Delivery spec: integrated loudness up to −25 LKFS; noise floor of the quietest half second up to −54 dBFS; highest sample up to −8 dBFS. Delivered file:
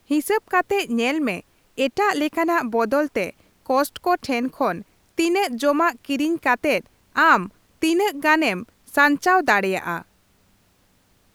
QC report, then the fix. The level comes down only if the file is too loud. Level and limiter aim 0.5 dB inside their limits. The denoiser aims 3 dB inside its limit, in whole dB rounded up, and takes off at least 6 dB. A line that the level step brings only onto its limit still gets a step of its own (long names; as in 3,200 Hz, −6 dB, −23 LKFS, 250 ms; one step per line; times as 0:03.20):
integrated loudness −21.0 LKFS: out of spec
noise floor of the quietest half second −61 dBFS: in spec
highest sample −3.0 dBFS: out of spec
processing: level −4.5 dB
brickwall limiter −8.5 dBFS